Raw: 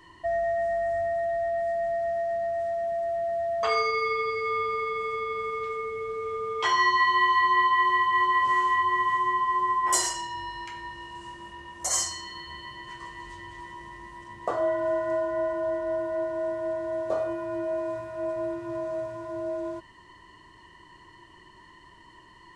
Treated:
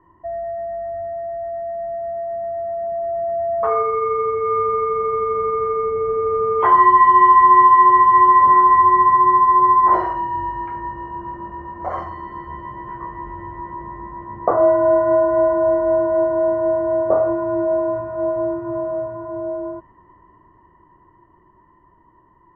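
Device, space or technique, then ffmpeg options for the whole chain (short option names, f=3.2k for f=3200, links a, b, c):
action camera in a waterproof case: -af "lowpass=f=1.3k:w=0.5412,lowpass=f=1.3k:w=1.3066,dynaudnorm=f=260:g=31:m=15dB" -ar 22050 -c:a aac -b:a 48k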